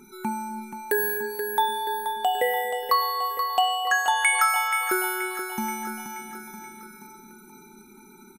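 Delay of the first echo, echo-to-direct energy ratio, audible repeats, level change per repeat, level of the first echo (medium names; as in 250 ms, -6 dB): 479 ms, -7.0 dB, 5, -5.0 dB, -8.5 dB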